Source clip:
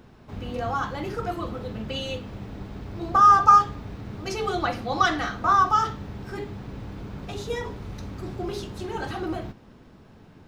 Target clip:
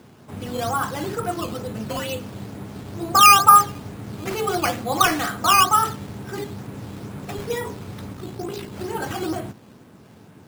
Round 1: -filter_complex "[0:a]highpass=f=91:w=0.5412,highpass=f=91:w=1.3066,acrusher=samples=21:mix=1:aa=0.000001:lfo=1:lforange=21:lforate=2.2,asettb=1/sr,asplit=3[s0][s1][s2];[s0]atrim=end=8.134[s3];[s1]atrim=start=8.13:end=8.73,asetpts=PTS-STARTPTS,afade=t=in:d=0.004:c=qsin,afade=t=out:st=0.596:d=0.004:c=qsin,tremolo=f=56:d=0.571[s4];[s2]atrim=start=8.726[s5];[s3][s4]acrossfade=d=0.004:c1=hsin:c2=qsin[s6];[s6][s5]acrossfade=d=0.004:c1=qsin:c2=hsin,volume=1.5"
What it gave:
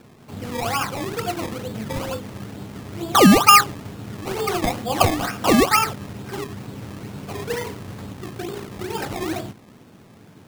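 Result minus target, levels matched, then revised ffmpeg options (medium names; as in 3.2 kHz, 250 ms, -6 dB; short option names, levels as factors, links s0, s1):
decimation with a swept rate: distortion +14 dB
-filter_complex "[0:a]highpass=f=91:w=0.5412,highpass=f=91:w=1.3066,acrusher=samples=8:mix=1:aa=0.000001:lfo=1:lforange=8:lforate=2.2,asettb=1/sr,asplit=3[s0][s1][s2];[s0]atrim=end=8.134[s3];[s1]atrim=start=8.13:end=8.73,asetpts=PTS-STARTPTS,afade=t=in:d=0.004:c=qsin,afade=t=out:st=0.596:d=0.004:c=qsin,tremolo=f=56:d=0.571[s4];[s2]atrim=start=8.726[s5];[s3][s4]acrossfade=d=0.004:c1=hsin:c2=qsin[s6];[s6][s5]acrossfade=d=0.004:c1=qsin:c2=hsin,volume=1.5"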